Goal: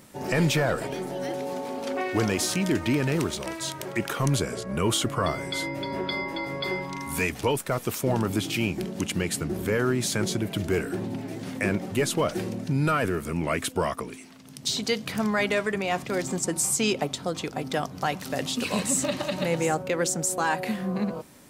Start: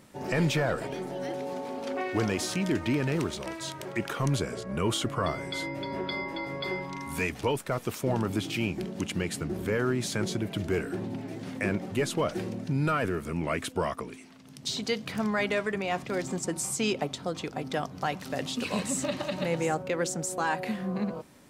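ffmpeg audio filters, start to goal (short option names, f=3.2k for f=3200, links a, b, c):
-af "highshelf=f=7.5k:g=8,volume=3dB"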